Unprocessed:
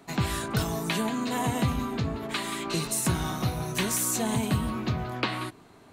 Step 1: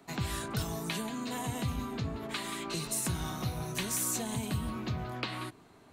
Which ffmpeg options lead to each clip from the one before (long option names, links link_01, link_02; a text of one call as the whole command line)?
ffmpeg -i in.wav -filter_complex "[0:a]acrossover=split=130|3000[link_01][link_02][link_03];[link_02]acompressor=threshold=-30dB:ratio=6[link_04];[link_01][link_04][link_03]amix=inputs=3:normalize=0,volume=-4.5dB" out.wav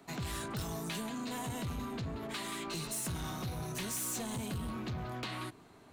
ffmpeg -i in.wav -af "asoftclip=type=tanh:threshold=-33.5dB" out.wav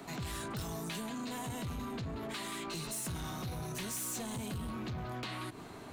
ffmpeg -i in.wav -af "alimiter=level_in=21dB:limit=-24dB:level=0:latency=1:release=105,volume=-21dB,volume=10dB" out.wav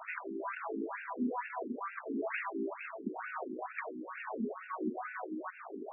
ffmpeg -i in.wav -af "afftfilt=real='re*between(b*sr/1024,290*pow(2000/290,0.5+0.5*sin(2*PI*2.2*pts/sr))/1.41,290*pow(2000/290,0.5+0.5*sin(2*PI*2.2*pts/sr))*1.41)':imag='im*between(b*sr/1024,290*pow(2000/290,0.5+0.5*sin(2*PI*2.2*pts/sr))/1.41,290*pow(2000/290,0.5+0.5*sin(2*PI*2.2*pts/sr))*1.41)':win_size=1024:overlap=0.75,volume=10dB" out.wav